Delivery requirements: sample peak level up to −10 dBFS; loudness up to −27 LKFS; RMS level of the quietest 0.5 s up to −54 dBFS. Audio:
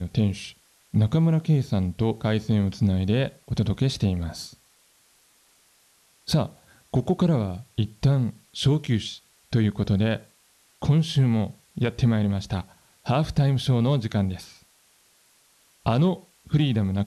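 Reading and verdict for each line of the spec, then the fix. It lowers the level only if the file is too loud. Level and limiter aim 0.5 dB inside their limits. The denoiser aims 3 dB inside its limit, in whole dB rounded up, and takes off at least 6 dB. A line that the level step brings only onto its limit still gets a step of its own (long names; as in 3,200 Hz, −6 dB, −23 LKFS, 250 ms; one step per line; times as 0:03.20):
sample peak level −11.0 dBFS: in spec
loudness −24.5 LKFS: out of spec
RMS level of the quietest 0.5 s −61 dBFS: in spec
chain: level −3 dB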